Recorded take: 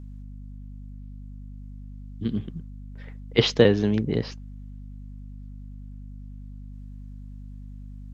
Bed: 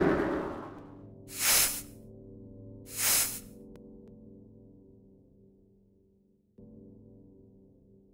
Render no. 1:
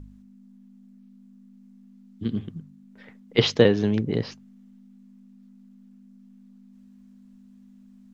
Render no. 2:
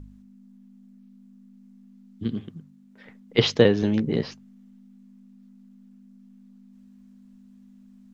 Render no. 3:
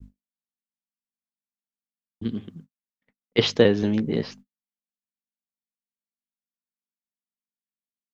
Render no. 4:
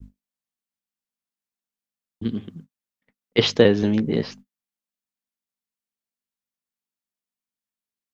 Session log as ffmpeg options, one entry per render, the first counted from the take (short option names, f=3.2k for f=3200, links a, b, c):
-af "bandreject=f=50:t=h:w=4,bandreject=f=100:t=h:w=4,bandreject=f=150:t=h:w=4"
-filter_complex "[0:a]asettb=1/sr,asplit=3[a][b][c];[a]atrim=end=2.344[d];[b]atrim=start=2.34:end=3.06,asetpts=PTS-STARTPTS,afade=t=in:d=0.004:c=qsin,afade=t=out:st=0.716:d=0.004:c=qsin,lowshelf=f=120:g=-11[e];[c]atrim=start=3.056[f];[d][e]acrossfade=d=0.004:c1=hsin:c2=qsin[g];[g][f]acrossfade=d=0.004:c1=qsin:c2=hsin,asettb=1/sr,asplit=3[h][i][j];[h]atrim=end=3.814[k];[i]atrim=start=3.81:end=4.27,asetpts=PTS-STARTPTS,afade=t=in:d=0.004:c=qsin,afade=t=out:st=0.456:d=0.004:c=qsin,asplit=2[l][m];[m]adelay=13,volume=-5.5dB[n];[l][n]amix=inputs=2:normalize=0,atrim=end_sample=20286[o];[j]atrim=start=4.266[p];[k][o]acrossfade=d=0.004:c1=hsin:c2=qsin[q];[q][p]acrossfade=d=0.004:c1=qsin:c2=hsin"
-af "equalizer=f=130:t=o:w=0.29:g=-6.5,agate=range=-59dB:threshold=-44dB:ratio=16:detection=peak"
-af "volume=2.5dB,alimiter=limit=-2dB:level=0:latency=1"